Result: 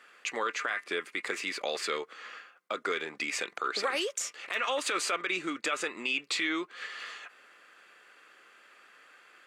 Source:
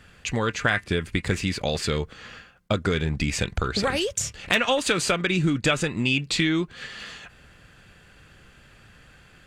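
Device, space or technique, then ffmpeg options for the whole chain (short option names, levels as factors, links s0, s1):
laptop speaker: -af "highpass=f=340:w=0.5412,highpass=f=340:w=1.3066,equalizer=f=1200:t=o:w=0.44:g=8.5,equalizer=f=2100:t=o:w=0.5:g=5.5,alimiter=limit=0.2:level=0:latency=1:release=36,volume=0.501"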